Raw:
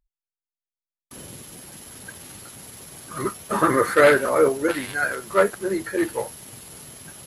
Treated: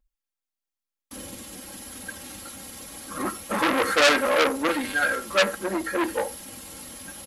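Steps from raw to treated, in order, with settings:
comb filter 3.7 ms, depth 88%
on a send: single-tap delay 78 ms −17.5 dB
on the sum: saturating transformer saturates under 4,000 Hz

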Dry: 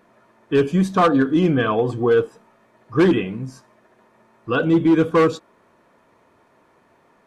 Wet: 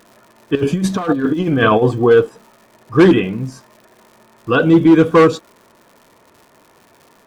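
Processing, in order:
0:00.55–0:01.89: compressor whose output falls as the input rises −20 dBFS, ratio −0.5
surface crackle 180 per second −42 dBFS
level +6 dB

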